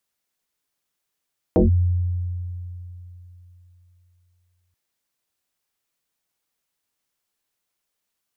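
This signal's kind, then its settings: FM tone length 3.18 s, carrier 88.8 Hz, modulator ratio 1.53, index 4.3, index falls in 0.14 s linear, decay 3.34 s, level -11 dB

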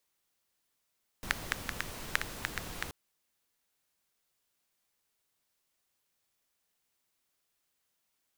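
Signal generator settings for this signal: rain from filtered ticks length 1.68 s, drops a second 5.1, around 1.7 kHz, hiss -2 dB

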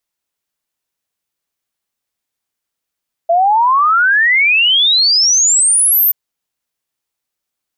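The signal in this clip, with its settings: log sweep 660 Hz -> 14 kHz 2.83 s -8 dBFS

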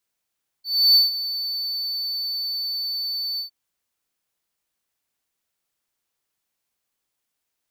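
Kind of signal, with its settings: ADSR triangle 4.51 kHz, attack 308 ms, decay 155 ms, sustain -14 dB, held 2.75 s, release 108 ms -8.5 dBFS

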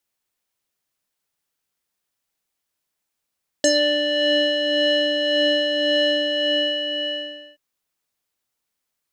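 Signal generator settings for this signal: synth patch with tremolo D5, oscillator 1 square, oscillator 2 sine, interval -12 st, oscillator 2 level -4.5 dB, sub -21 dB, noise -28 dB, filter lowpass, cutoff 2.7 kHz, Q 7.8, filter envelope 1.5 oct, filter decay 0.16 s, filter sustain 20%, attack 2 ms, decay 0.08 s, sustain -6 dB, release 1.47 s, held 2.46 s, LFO 1.8 Hz, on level 4 dB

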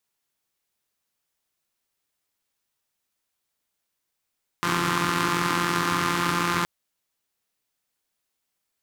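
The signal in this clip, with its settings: four-cylinder engine model, steady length 2.02 s, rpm 5200, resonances 160/290/1100 Hz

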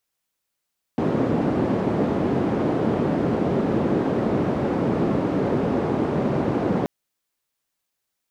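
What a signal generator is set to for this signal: noise band 160–340 Hz, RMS -22 dBFS 5.88 s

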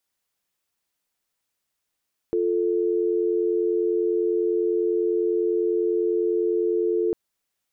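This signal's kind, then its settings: call progress tone dial tone, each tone -22.5 dBFS 4.80 s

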